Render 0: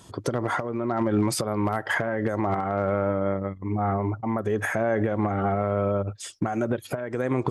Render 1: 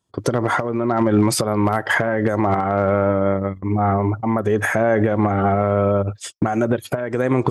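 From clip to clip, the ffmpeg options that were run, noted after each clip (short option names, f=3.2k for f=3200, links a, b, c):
-af "agate=range=-32dB:threshold=-37dB:ratio=16:detection=peak,volume=7dB"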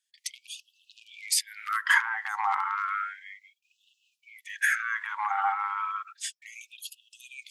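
-af "afftfilt=real='re*gte(b*sr/1024,740*pow(2600/740,0.5+0.5*sin(2*PI*0.32*pts/sr)))':imag='im*gte(b*sr/1024,740*pow(2600/740,0.5+0.5*sin(2*PI*0.32*pts/sr)))':win_size=1024:overlap=0.75,volume=-2dB"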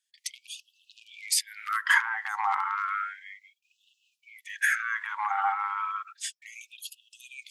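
-af anull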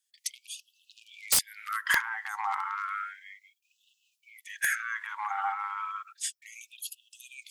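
-af "crystalizer=i=1.5:c=0,aeval=exprs='(mod(2.99*val(0)+1,2)-1)/2.99':c=same,volume=-4.5dB"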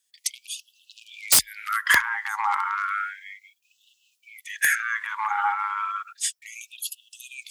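-af "afreqshift=31,volume=7dB"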